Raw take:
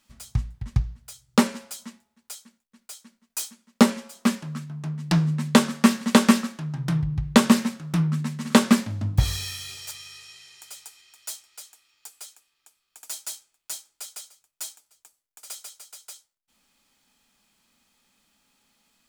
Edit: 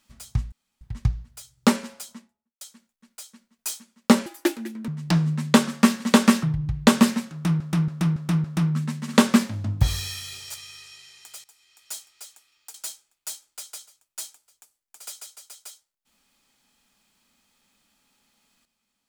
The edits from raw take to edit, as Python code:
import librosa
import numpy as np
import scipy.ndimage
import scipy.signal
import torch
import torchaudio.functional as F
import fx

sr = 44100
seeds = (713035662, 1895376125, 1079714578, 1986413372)

y = fx.studio_fade_out(x, sr, start_s=1.66, length_s=0.66)
y = fx.edit(y, sr, fx.insert_room_tone(at_s=0.52, length_s=0.29),
    fx.speed_span(start_s=3.97, length_s=0.92, speed=1.48),
    fx.cut(start_s=6.44, length_s=0.48),
    fx.repeat(start_s=7.81, length_s=0.28, count=5),
    fx.fade_in_from(start_s=10.81, length_s=0.5, floor_db=-16.0),
    fx.cut(start_s=12.11, length_s=1.06), tone=tone)